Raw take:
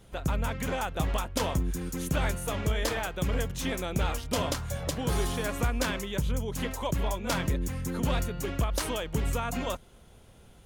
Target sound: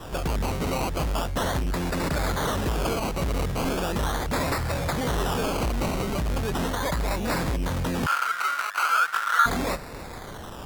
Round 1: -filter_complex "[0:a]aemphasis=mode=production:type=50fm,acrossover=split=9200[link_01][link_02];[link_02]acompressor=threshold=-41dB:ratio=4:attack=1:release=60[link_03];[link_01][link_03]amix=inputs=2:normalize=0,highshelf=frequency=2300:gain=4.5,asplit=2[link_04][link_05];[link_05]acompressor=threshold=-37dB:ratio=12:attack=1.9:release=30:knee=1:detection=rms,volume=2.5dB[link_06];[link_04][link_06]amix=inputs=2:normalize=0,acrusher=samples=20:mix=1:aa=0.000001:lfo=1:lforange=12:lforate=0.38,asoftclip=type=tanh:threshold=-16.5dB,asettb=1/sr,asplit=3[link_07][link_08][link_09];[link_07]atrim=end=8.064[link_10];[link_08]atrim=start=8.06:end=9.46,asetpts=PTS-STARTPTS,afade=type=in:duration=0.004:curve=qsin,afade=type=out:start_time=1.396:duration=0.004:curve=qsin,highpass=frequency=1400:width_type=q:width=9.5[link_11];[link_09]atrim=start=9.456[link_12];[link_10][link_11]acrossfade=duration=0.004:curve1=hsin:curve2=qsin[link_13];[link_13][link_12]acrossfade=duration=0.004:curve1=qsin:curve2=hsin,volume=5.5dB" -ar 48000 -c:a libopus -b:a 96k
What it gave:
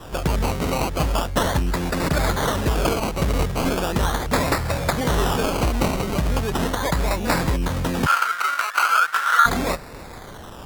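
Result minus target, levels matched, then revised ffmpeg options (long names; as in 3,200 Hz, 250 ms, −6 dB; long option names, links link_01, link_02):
soft clipping: distortion −12 dB
-filter_complex "[0:a]aemphasis=mode=production:type=50fm,acrossover=split=9200[link_01][link_02];[link_02]acompressor=threshold=-41dB:ratio=4:attack=1:release=60[link_03];[link_01][link_03]amix=inputs=2:normalize=0,highshelf=frequency=2300:gain=4.5,asplit=2[link_04][link_05];[link_05]acompressor=threshold=-37dB:ratio=12:attack=1.9:release=30:knee=1:detection=rms,volume=2.5dB[link_06];[link_04][link_06]amix=inputs=2:normalize=0,acrusher=samples=20:mix=1:aa=0.000001:lfo=1:lforange=12:lforate=0.38,asoftclip=type=tanh:threshold=-28dB,asettb=1/sr,asplit=3[link_07][link_08][link_09];[link_07]atrim=end=8.064[link_10];[link_08]atrim=start=8.06:end=9.46,asetpts=PTS-STARTPTS,afade=type=in:duration=0.004:curve=qsin,afade=type=out:start_time=1.396:duration=0.004:curve=qsin,highpass=frequency=1400:width_type=q:width=9.5[link_11];[link_09]atrim=start=9.456[link_12];[link_10][link_11]acrossfade=duration=0.004:curve1=hsin:curve2=qsin[link_13];[link_13][link_12]acrossfade=duration=0.004:curve1=qsin:curve2=hsin,volume=5.5dB" -ar 48000 -c:a libopus -b:a 96k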